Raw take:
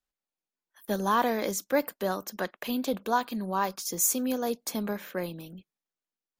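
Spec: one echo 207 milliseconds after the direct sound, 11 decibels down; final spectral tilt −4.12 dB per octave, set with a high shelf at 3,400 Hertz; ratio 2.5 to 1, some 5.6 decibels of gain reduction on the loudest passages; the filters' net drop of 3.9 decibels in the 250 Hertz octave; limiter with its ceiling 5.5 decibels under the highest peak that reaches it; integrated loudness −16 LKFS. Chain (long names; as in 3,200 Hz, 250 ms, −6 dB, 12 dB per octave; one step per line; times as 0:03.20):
parametric band 250 Hz −4.5 dB
high-shelf EQ 3,400 Hz −8 dB
downward compressor 2.5 to 1, threshold −29 dBFS
brickwall limiter −24.5 dBFS
single-tap delay 207 ms −11 dB
level +20 dB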